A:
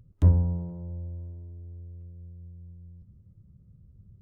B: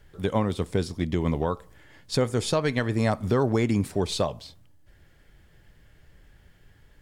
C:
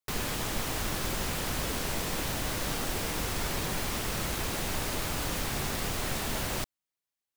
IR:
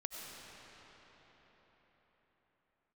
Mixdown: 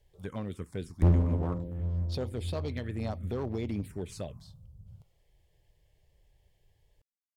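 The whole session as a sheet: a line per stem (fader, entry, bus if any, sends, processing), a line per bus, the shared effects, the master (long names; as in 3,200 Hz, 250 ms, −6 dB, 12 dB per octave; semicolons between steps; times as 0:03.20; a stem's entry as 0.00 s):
+0.5 dB, 0.80 s, send −5 dB, no processing
−9.5 dB, 0.00 s, no send, no processing
muted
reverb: on, RT60 5.0 s, pre-delay 55 ms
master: phaser swept by the level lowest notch 230 Hz, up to 4,300 Hz, full sweep at −24 dBFS; asymmetric clip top −31 dBFS, bottom −13 dBFS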